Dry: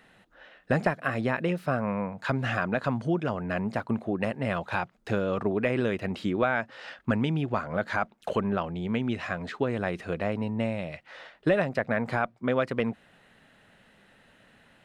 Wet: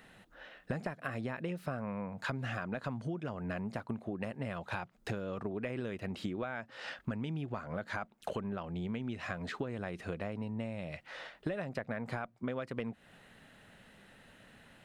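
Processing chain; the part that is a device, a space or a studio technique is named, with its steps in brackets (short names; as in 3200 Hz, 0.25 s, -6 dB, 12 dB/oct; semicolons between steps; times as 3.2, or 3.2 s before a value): ASMR close-microphone chain (low shelf 220 Hz +4 dB; compressor 6:1, threshold -34 dBFS, peak gain reduction 15 dB; high shelf 6300 Hz +5.5 dB); gain -1 dB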